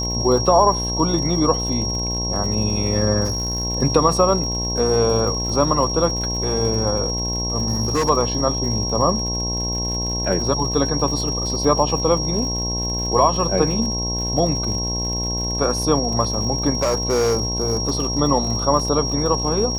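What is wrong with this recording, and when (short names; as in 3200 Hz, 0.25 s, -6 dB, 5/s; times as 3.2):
buzz 60 Hz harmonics 18 -26 dBFS
crackle 110/s -29 dBFS
tone 5600 Hz -24 dBFS
3.24–3.65 clipped -18.5 dBFS
7.67–8.1 clipped -15.5 dBFS
16.75–18.18 clipped -14.5 dBFS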